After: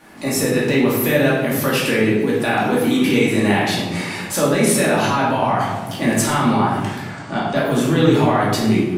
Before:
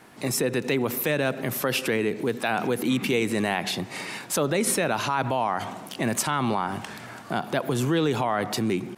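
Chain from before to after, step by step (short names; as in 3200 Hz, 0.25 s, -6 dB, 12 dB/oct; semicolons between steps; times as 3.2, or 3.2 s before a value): 6.98–7.56 elliptic low-pass 8600 Hz, stop band 40 dB; reverb RT60 1.0 s, pre-delay 3 ms, DRR -7 dB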